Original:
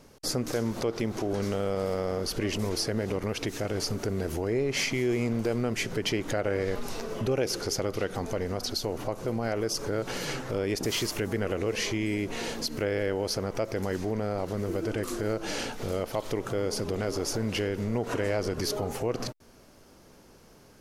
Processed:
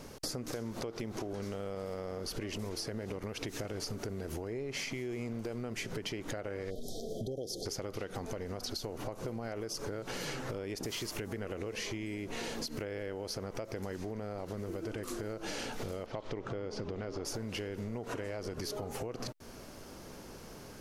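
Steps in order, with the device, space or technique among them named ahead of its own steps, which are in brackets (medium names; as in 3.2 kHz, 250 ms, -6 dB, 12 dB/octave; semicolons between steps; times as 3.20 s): 16.06–17.25 s: distance through air 150 m; serial compression, peaks first (compression, threshold -37 dBFS, peak gain reduction 14 dB; compression 2:1, threshold -45 dBFS, peak gain reduction 6 dB); 6.71–7.66 s: spectral selection erased 780–3100 Hz; trim +6 dB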